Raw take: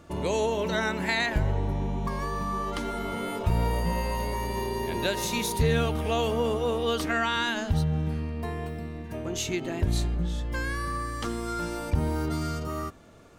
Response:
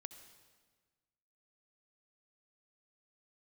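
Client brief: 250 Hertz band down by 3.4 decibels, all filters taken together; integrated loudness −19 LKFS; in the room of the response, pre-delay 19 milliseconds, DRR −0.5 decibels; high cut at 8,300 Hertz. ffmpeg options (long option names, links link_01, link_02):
-filter_complex "[0:a]lowpass=8300,equalizer=frequency=250:width_type=o:gain=-5,asplit=2[link_01][link_02];[1:a]atrim=start_sample=2205,adelay=19[link_03];[link_02][link_03]afir=irnorm=-1:irlink=0,volume=5.5dB[link_04];[link_01][link_04]amix=inputs=2:normalize=0,volume=7dB"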